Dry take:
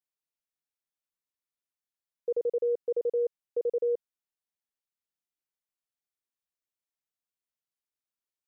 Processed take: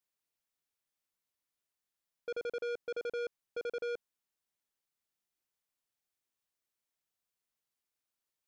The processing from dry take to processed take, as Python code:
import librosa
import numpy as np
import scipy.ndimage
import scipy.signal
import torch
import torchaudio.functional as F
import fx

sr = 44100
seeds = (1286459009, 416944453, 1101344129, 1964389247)

y = 10.0 ** (-38.5 / 20.0) * np.tanh(x / 10.0 ** (-38.5 / 20.0))
y = y * 10.0 ** (3.5 / 20.0)